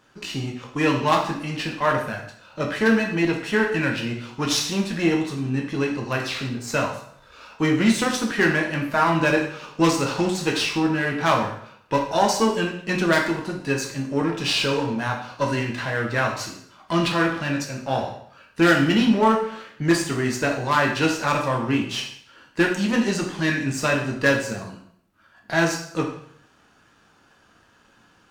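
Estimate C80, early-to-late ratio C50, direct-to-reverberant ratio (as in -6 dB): 10.0 dB, 7.0 dB, 0.5 dB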